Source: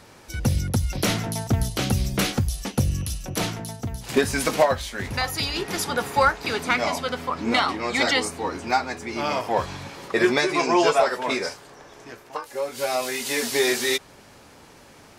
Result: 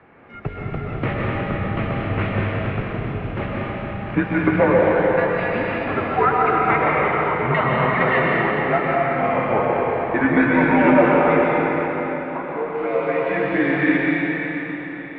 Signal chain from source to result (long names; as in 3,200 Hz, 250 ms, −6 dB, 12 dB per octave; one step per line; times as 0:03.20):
comb and all-pass reverb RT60 4.3 s, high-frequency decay 0.9×, pre-delay 85 ms, DRR −5 dB
single-sideband voice off tune −97 Hz 190–2,500 Hz